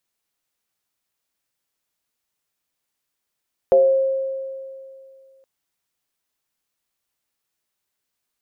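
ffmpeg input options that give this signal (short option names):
-f lavfi -i "aevalsrc='0.355*pow(10,-3*t/2.4)*sin(2*PI*535*t+0.61*pow(10,-3*t/0.63)*sin(2*PI*0.28*535*t))':d=1.72:s=44100"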